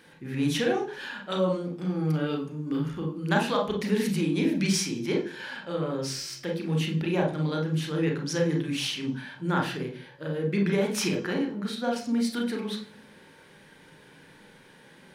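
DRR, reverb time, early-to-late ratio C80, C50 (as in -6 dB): 1.0 dB, 0.50 s, 14.0 dB, 8.5 dB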